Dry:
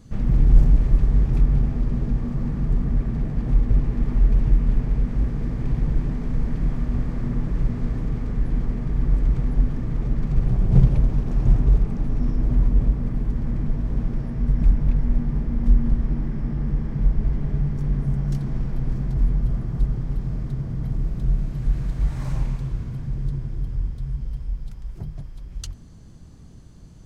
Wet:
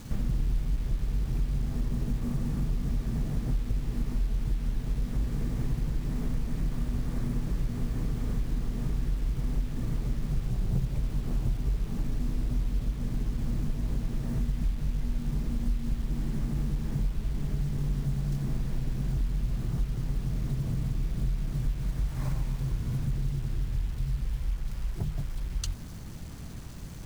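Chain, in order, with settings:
downward compressor 6 to 1, threshold −30 dBFS, peak gain reduction 21.5 dB
bit reduction 9 bits
level +4 dB

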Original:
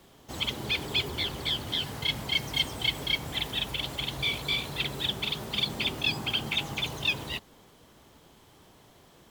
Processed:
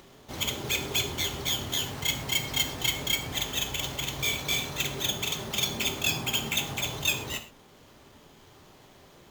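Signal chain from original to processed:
sample-rate reduction 10,000 Hz, jitter 0%
upward compression, threshold −50 dBFS
reverb whose tail is shaped and stops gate 150 ms falling, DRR 5.5 dB

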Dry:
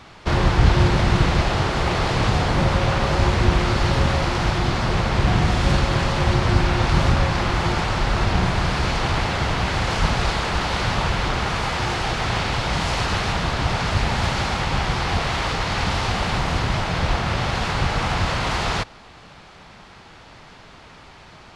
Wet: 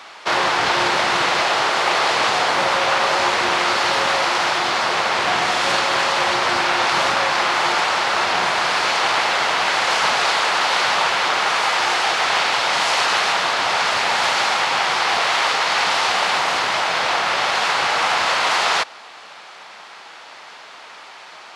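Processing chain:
high-pass filter 650 Hz 12 dB per octave
level +7.5 dB

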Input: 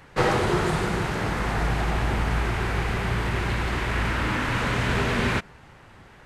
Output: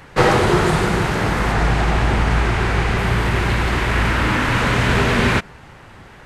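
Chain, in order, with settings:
0:01.52–0:02.98: low-pass filter 9,600 Hz 12 dB per octave
level +7.5 dB

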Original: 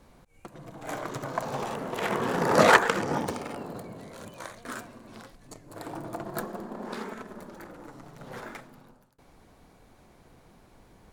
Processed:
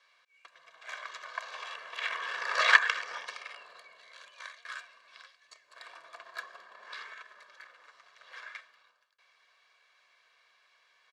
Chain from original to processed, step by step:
flat-topped band-pass 2,700 Hz, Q 0.8
comb filter 1.8 ms, depth 65%

